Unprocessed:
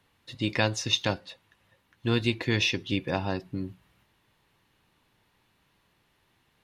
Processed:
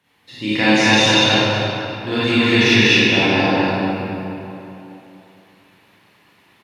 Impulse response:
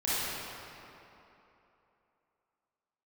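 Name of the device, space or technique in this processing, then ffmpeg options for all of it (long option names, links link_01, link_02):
stadium PA: -filter_complex "[0:a]highpass=130,equalizer=frequency=2300:width_type=o:width=0.59:gain=3.5,aecho=1:1:198.3|236.2:0.708|0.794[link_01];[1:a]atrim=start_sample=2205[link_02];[link_01][link_02]afir=irnorm=-1:irlink=0,volume=1dB"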